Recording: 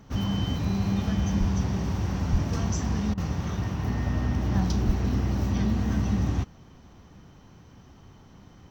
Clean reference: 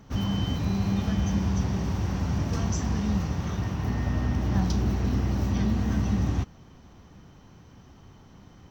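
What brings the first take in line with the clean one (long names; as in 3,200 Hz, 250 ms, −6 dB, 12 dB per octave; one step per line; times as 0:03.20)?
0:01.39–0:01.51: high-pass filter 140 Hz 24 dB per octave
0:02.31–0:02.43: high-pass filter 140 Hz 24 dB per octave
0:04.86–0:04.98: high-pass filter 140 Hz 24 dB per octave
repair the gap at 0:03.14, 35 ms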